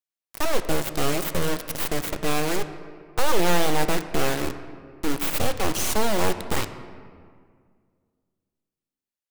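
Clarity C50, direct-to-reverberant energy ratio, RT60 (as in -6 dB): 11.0 dB, 9.0 dB, 2.0 s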